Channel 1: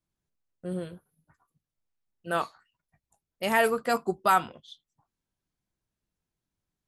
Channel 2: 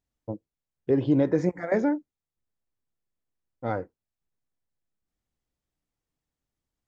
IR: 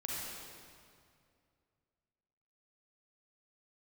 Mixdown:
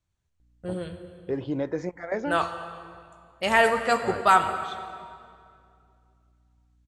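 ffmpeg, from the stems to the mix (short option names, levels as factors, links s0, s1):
-filter_complex "[0:a]equalizer=f=79:w=1.1:g=14.5,bandreject=f=5000:w=11,volume=1.33,asplit=2[s0][s1];[s1]volume=0.473[s2];[1:a]aeval=exprs='val(0)+0.00141*(sin(2*PI*60*n/s)+sin(2*PI*2*60*n/s)/2+sin(2*PI*3*60*n/s)/3+sin(2*PI*4*60*n/s)/4+sin(2*PI*5*60*n/s)/5)':c=same,adelay=400,volume=0.841[s3];[2:a]atrim=start_sample=2205[s4];[s2][s4]afir=irnorm=-1:irlink=0[s5];[s0][s3][s5]amix=inputs=3:normalize=0,lowpass=f=8500:w=0.5412,lowpass=f=8500:w=1.3066,equalizer=f=190:w=0.53:g=-8"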